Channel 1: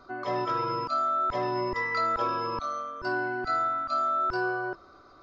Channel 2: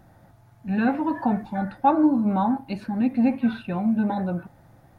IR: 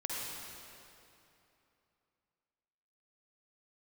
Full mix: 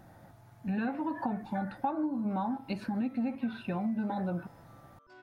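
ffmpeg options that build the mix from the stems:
-filter_complex "[0:a]asoftclip=type=tanh:threshold=-28dB,adelay=2050,volume=-16.5dB[link_01];[1:a]lowshelf=frequency=83:gain=-7.5,acompressor=threshold=-30dB:ratio=6,volume=0dB,asplit=2[link_02][link_03];[link_03]apad=whole_len=321040[link_04];[link_01][link_04]sidechaincompress=threshold=-46dB:ratio=8:attack=16:release=1110[link_05];[link_05][link_02]amix=inputs=2:normalize=0"

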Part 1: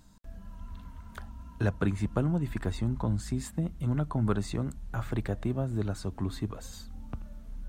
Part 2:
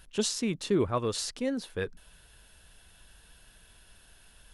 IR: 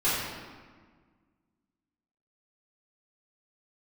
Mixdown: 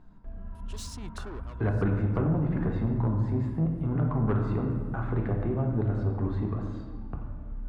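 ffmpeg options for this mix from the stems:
-filter_complex "[0:a]deesser=0.95,lowpass=1500,volume=0.5dB,asplit=3[link_01][link_02][link_03];[link_02]volume=-12dB[link_04];[1:a]asoftclip=type=tanh:threshold=-31dB,adelay=550,volume=-5.5dB,afade=type=out:start_time=1.33:duration=0.24:silence=0.266073[link_05];[link_03]apad=whole_len=224342[link_06];[link_05][link_06]sidechaincompress=threshold=-41dB:ratio=8:attack=6:release=135[link_07];[2:a]atrim=start_sample=2205[link_08];[link_04][link_08]afir=irnorm=-1:irlink=0[link_09];[link_01][link_07][link_09]amix=inputs=3:normalize=0,asoftclip=type=tanh:threshold=-19dB"

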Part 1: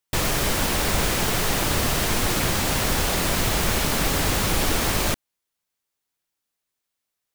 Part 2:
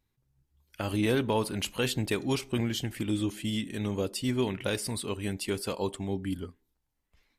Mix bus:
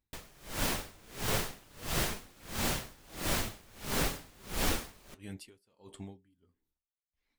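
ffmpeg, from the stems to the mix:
ffmpeg -i stem1.wav -i stem2.wav -filter_complex "[0:a]bandreject=frequency=63.04:width_type=h:width=4,bandreject=frequency=126.08:width_type=h:width=4,bandreject=frequency=189.12:width_type=h:width=4,bandreject=frequency=252.16:width_type=h:width=4,bandreject=frequency=315.2:width_type=h:width=4,bandreject=frequency=378.24:width_type=h:width=4,bandreject=frequency=441.28:width_type=h:width=4,bandreject=frequency=504.32:width_type=h:width=4,bandreject=frequency=567.36:width_type=h:width=4,bandreject=frequency=630.4:width_type=h:width=4,bandreject=frequency=693.44:width_type=h:width=4,bandreject=frequency=756.48:width_type=h:width=4,bandreject=frequency=819.52:width_type=h:width=4,bandreject=frequency=882.56:width_type=h:width=4,bandreject=frequency=945.6:width_type=h:width=4,bandreject=frequency=1008.64:width_type=h:width=4,bandreject=frequency=1071.68:width_type=h:width=4,bandreject=frequency=1134.72:width_type=h:width=4,bandreject=frequency=1197.76:width_type=h:width=4,bandreject=frequency=1260.8:width_type=h:width=4,aeval=exprs='sgn(val(0))*max(abs(val(0))-0.0112,0)':channel_layout=same,volume=-1.5dB[link_01];[1:a]alimiter=limit=-23.5dB:level=0:latency=1,volume=-4dB[link_02];[link_01][link_02]amix=inputs=2:normalize=0,flanger=delay=3.5:depth=6.4:regen=-68:speed=0.42:shape=triangular,aeval=exprs='val(0)*pow(10,-30*(0.5-0.5*cos(2*PI*1.5*n/s))/20)':channel_layout=same" out.wav

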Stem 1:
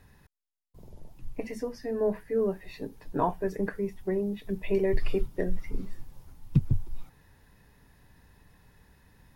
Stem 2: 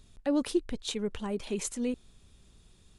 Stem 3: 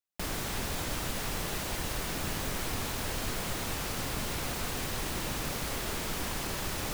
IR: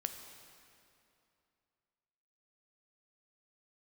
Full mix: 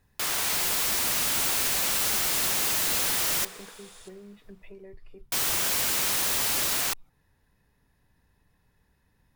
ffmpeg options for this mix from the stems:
-filter_complex "[0:a]acompressor=threshold=-33dB:ratio=16,volume=-15.5dB[link_01];[1:a]highpass=frequency=470:width=0.5412,highpass=frequency=470:width=1.3066,highshelf=frequency=4900:gain=8,adelay=1100,volume=2dB,asplit=2[link_02][link_03];[link_03]volume=-6dB[link_04];[2:a]highpass=850,dynaudnorm=framelen=210:gausssize=5:maxgain=4dB,volume=2dB,asplit=3[link_05][link_06][link_07];[link_05]atrim=end=3.45,asetpts=PTS-STARTPTS,afade=type=out:start_time=3.446:duration=0.004:curve=hsin[link_08];[link_06]atrim=start=3.45:end=5.32,asetpts=PTS-STARTPTS,volume=0[link_09];[link_07]atrim=start=5.32,asetpts=PTS-STARTPTS,afade=type=in:duration=0.004:curve=hsin[link_10];[link_08][link_09][link_10]concat=n=3:v=0:a=1,asplit=2[link_11][link_12];[link_12]volume=-10.5dB[link_13];[3:a]atrim=start_sample=2205[link_14];[link_04][link_13]amix=inputs=2:normalize=0[link_15];[link_15][link_14]afir=irnorm=-1:irlink=0[link_16];[link_01][link_02][link_11][link_16]amix=inputs=4:normalize=0,acontrast=54,aeval=exprs='(mod(11.2*val(0)+1,2)-1)/11.2':channel_layout=same"

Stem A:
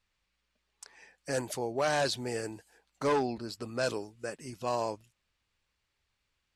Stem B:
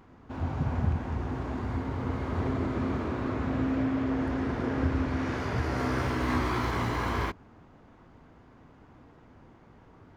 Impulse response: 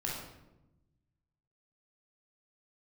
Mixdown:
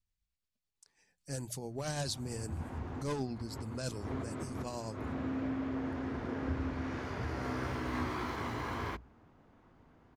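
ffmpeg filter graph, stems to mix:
-filter_complex "[0:a]lowshelf=frequency=210:gain=7,tremolo=f=9:d=0.4,bass=frequency=250:gain=13,treble=frequency=4000:gain=12,volume=-11dB,afade=type=in:start_time=0.82:duration=0.79:silence=0.375837,asplit=2[link_01][link_02];[1:a]adelay=1650,volume=-7.5dB[link_03];[link_02]apad=whole_len=520897[link_04];[link_03][link_04]sidechaincompress=threshold=-46dB:ratio=8:attack=9.4:release=109[link_05];[link_01][link_05]amix=inputs=2:normalize=0,bandreject=frequency=60:width_type=h:width=6,bandreject=frequency=120:width_type=h:width=6,bandreject=frequency=180:width_type=h:width=6"

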